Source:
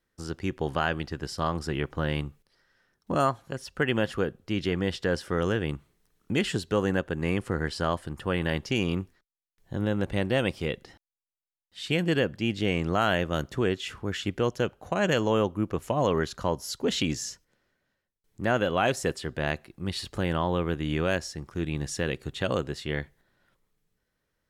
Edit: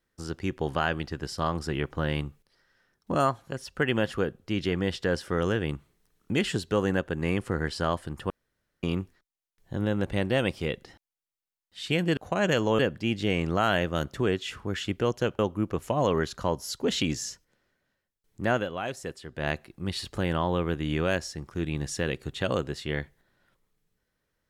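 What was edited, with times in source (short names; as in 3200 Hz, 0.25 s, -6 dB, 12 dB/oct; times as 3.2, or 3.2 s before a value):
8.3–8.83 room tone
14.77–15.39 move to 12.17
18.53–19.48 dip -8.5 dB, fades 0.16 s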